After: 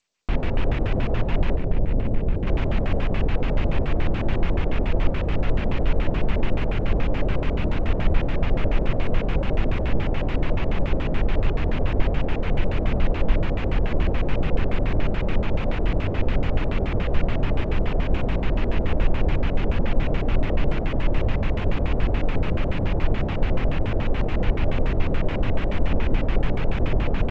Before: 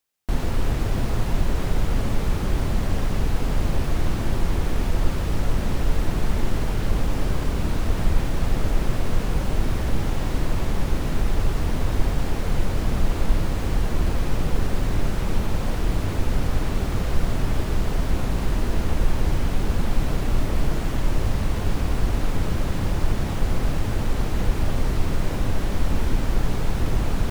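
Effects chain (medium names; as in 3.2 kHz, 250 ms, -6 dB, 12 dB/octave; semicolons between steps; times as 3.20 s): 1.56–2.47 s: median filter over 41 samples; LFO low-pass square 7 Hz 590–2600 Hz; G.722 64 kbps 16 kHz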